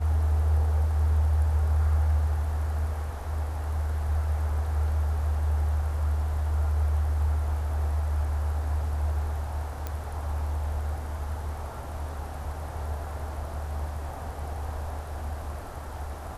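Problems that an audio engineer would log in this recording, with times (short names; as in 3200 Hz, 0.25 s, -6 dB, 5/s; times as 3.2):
9.87 pop -18 dBFS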